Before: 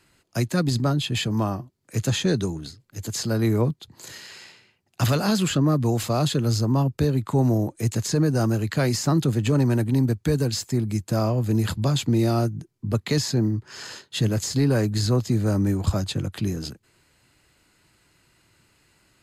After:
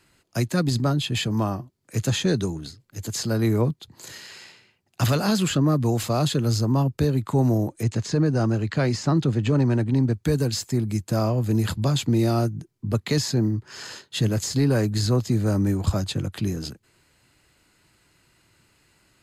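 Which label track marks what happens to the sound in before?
7.830000	10.140000	high-frequency loss of the air 87 metres

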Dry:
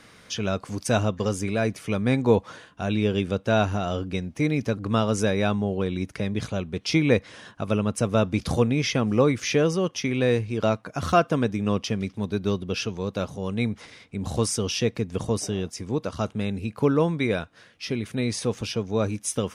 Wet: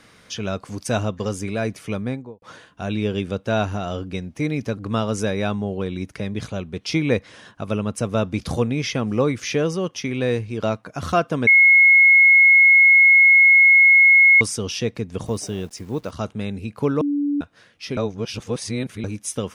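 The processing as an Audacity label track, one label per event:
1.870000	2.420000	fade out and dull
11.470000	14.410000	beep over 2,170 Hz −8.5 dBFS
15.260000	16.110000	hold until the input has moved step −48 dBFS
17.010000	17.410000	beep over 288 Hz −18.5 dBFS
17.970000	19.040000	reverse

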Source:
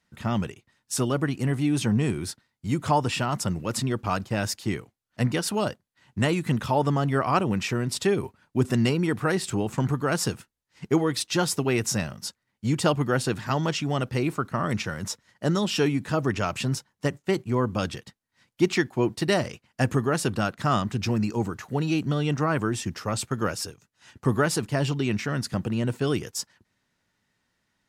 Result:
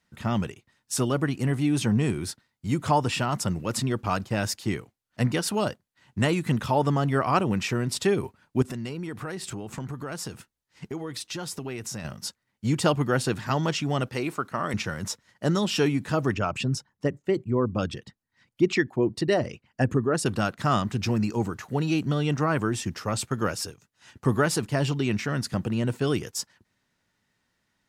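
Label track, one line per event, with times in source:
8.620000	12.050000	downward compressor 4 to 1, threshold −32 dBFS
14.080000	14.740000	low-shelf EQ 200 Hz −11.5 dB
16.340000	20.260000	spectral envelope exaggerated exponent 1.5

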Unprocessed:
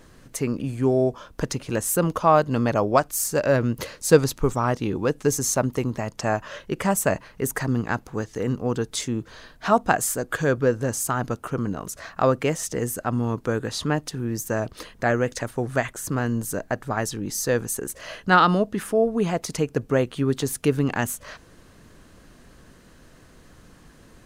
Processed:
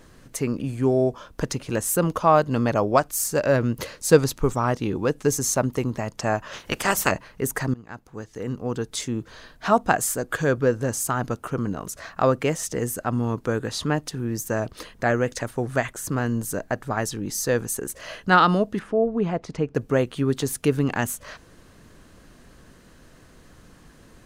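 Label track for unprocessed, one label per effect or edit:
6.520000	7.100000	ceiling on every frequency bin ceiling under each frame's peak by 21 dB
7.740000	9.700000	fade in equal-power, from −22 dB
18.790000	19.750000	head-to-tape spacing loss at 10 kHz 24 dB

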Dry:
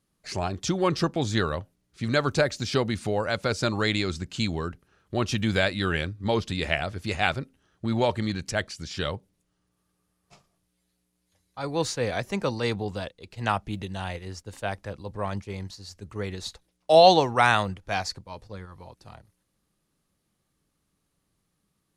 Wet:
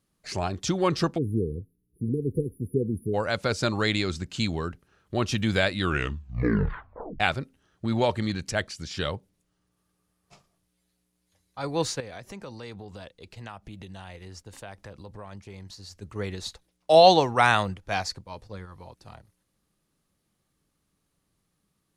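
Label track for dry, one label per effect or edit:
1.180000	3.140000	time-frequency box erased 510–9,600 Hz
5.790000	5.790000	tape stop 1.41 s
12.000000	15.930000	downward compressor 4 to 1, threshold −39 dBFS

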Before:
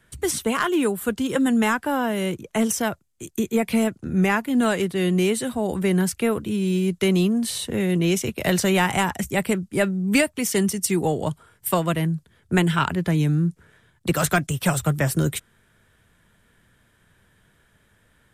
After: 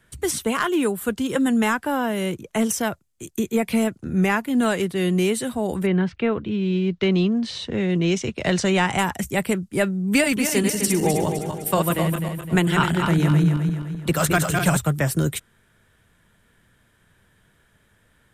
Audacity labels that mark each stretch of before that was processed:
5.850000	8.970000	low-pass filter 3,200 Hz → 8,300 Hz 24 dB per octave
10.110000	14.770000	feedback delay that plays each chunk backwards 128 ms, feedback 65%, level −4 dB

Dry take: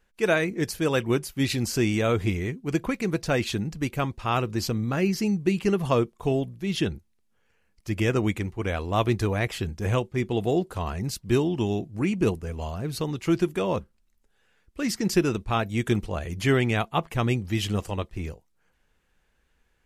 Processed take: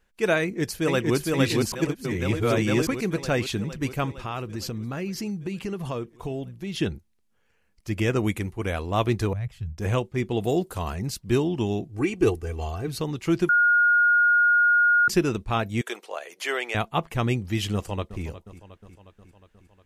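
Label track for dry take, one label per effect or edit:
0.410000	1.160000	delay throw 460 ms, feedback 70%, level −1.5 dB
1.720000	2.870000	reverse
4.200000	6.810000	downward compressor 3 to 1, threshold −29 dBFS
8.190000	8.800000	parametric band 11,000 Hz +10.5 dB 0.55 octaves
9.330000	9.780000	drawn EQ curve 130 Hz 0 dB, 320 Hz −27 dB, 590 Hz −18 dB
10.440000	10.950000	high-shelf EQ 7,400 Hz +11.5 dB
11.890000	12.880000	comb filter 2.6 ms, depth 69%
13.490000	15.080000	beep over 1,430 Hz −15.5 dBFS
15.810000	16.750000	high-pass filter 480 Hz 24 dB per octave
17.740000	18.230000	delay throw 360 ms, feedback 65%, level −14.5 dB

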